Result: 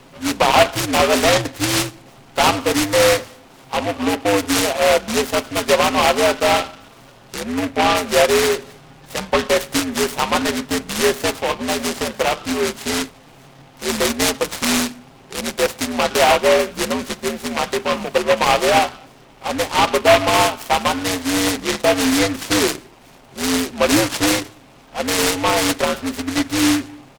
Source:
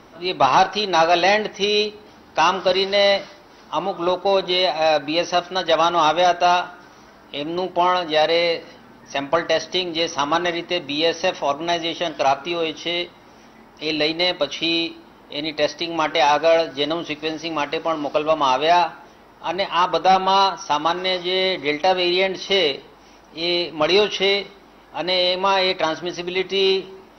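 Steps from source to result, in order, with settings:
frequency shifter −87 Hz
comb filter 7.5 ms, depth 43%
short delay modulated by noise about 1,600 Hz, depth 0.11 ms
level +1 dB

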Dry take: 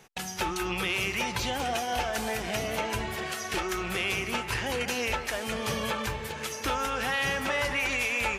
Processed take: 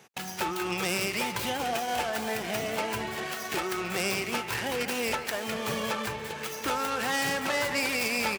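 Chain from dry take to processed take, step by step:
stylus tracing distortion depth 0.24 ms
high-pass filter 130 Hz 12 dB per octave
single-tap delay 141 ms −20 dB

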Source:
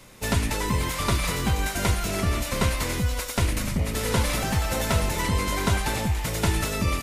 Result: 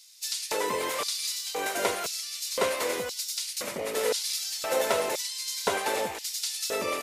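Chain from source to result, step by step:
auto-filter high-pass square 0.97 Hz 470–4,700 Hz
level −2 dB

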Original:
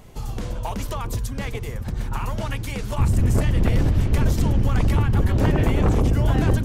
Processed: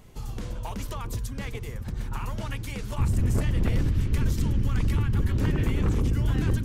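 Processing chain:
parametric band 690 Hz −4 dB 0.91 octaves, from 0:03.81 −12.5 dB
level −5 dB

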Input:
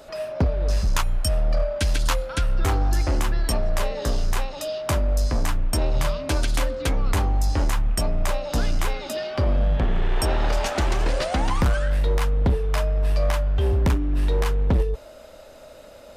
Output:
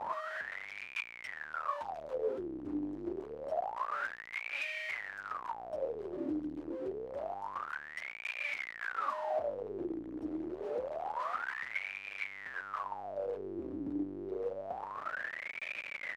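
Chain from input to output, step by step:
comparator with hysteresis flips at −41 dBFS
pitch vibrato 0.42 Hz 22 cents
LFO wah 0.27 Hz 300–2,400 Hz, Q 17
level +3.5 dB

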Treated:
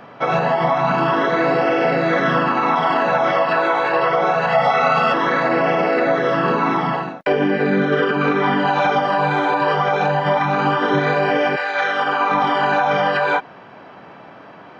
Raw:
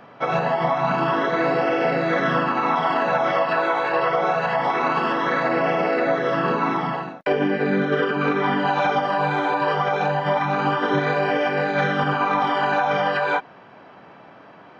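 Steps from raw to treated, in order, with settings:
0:04.52–0:05.14: comb filter 1.5 ms, depth 94%
0:11.55–0:12.30: high-pass filter 1,100 Hz → 300 Hz 12 dB per octave
in parallel at −2 dB: brickwall limiter −16.5 dBFS, peak gain reduction 10 dB

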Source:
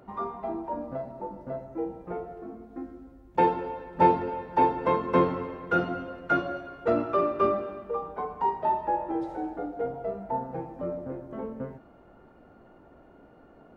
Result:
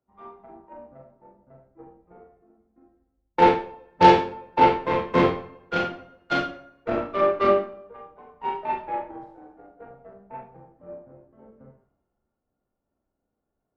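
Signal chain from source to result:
harmonic generator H 5 −21 dB, 6 −27 dB, 7 −17 dB, 8 −26 dB, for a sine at −7.5 dBFS
four-comb reverb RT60 0.43 s, combs from 29 ms, DRR −0.5 dB
multiband upward and downward expander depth 70%
level −2.5 dB

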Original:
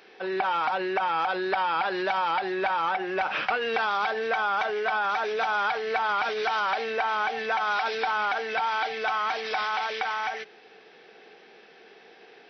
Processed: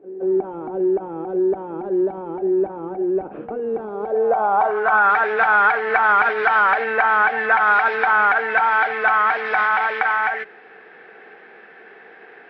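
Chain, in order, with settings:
harmonic generator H 3 −22 dB, 6 −34 dB, 8 −36 dB, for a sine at −14.5 dBFS
low-pass filter sweep 350 Hz → 1,700 Hz, 0:03.89–0:05.13
backwards echo 172 ms −15 dB
level +7.5 dB

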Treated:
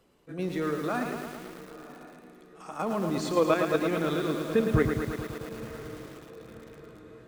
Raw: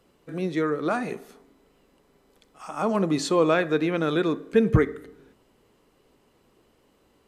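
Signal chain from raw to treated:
in parallel at −11 dB: soft clipping −18.5 dBFS, distortion −11 dB
on the sum: output level in coarse steps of 9 dB
feedback delay with all-pass diffusion 1,047 ms, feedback 52%, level −15 dB
feedback echo at a low word length 111 ms, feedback 80%, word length 7 bits, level −6 dB
level −2.5 dB

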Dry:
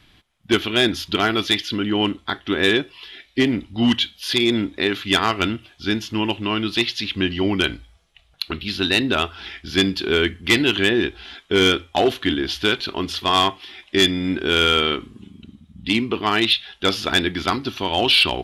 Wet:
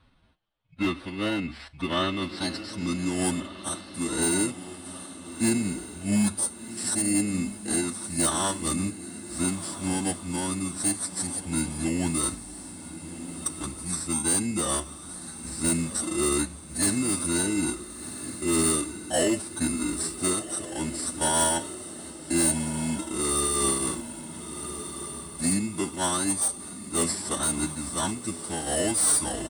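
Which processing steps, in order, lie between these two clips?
samples in bit-reversed order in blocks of 16 samples
phase-vocoder stretch with locked phases 1.6×
low-pass filter sweep 3,400 Hz → 9,400 Hz, 0:02.05–0:03.30
pitch shifter −2.5 semitones
hard clipping −11.5 dBFS, distortion −18 dB
feedback delay with all-pass diffusion 1,397 ms, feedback 49%, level −11.5 dB
amplitude modulation by smooth noise, depth 50%
level −4 dB

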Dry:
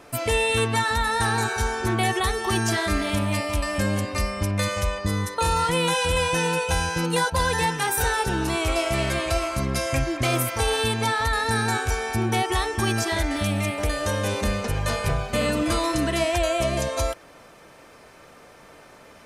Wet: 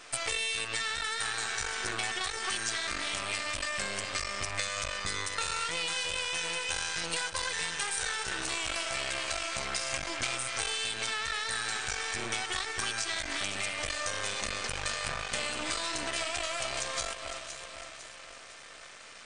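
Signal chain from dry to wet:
notch filter 930 Hz, Q 5.4
delay that swaps between a low-pass and a high-pass 253 ms, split 2,100 Hz, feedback 69%, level −12 dB
half-wave rectification
linear-phase brick-wall low-pass 9,500 Hz
tilt shelving filter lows −9.5 dB, about 810 Hz
downward compressor 5 to 1, threshold −30 dBFS, peak gain reduction 11.5 dB

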